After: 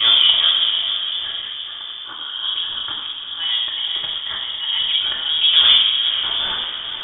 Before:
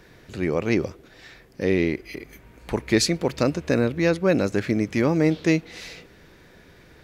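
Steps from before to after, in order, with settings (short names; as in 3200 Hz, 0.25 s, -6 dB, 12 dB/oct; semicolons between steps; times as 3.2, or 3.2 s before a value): slices in reverse order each 0.164 s, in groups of 5; HPF 53 Hz 12 dB/oct; de-hum 103.2 Hz, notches 33; in parallel at 0 dB: compressor 6:1, threshold -28 dBFS, peak gain reduction 13 dB; on the sum: auto swell 0.521 s; soft clip -14.5 dBFS, distortion -13 dB; on a send: diffused feedback echo 0.493 s, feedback 51%, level -8 dB; on the sum: shoebox room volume 690 m³, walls mixed, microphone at 2.1 m; inverted band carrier 3500 Hz; gain +3 dB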